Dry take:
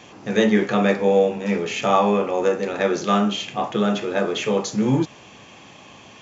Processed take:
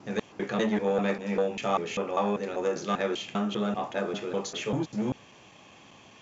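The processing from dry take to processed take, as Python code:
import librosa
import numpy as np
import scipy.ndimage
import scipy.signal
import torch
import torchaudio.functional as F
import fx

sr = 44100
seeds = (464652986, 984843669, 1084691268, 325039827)

y = fx.block_reorder(x, sr, ms=197.0, group=2)
y = fx.transformer_sat(y, sr, knee_hz=540.0)
y = y * 10.0 ** (-8.0 / 20.0)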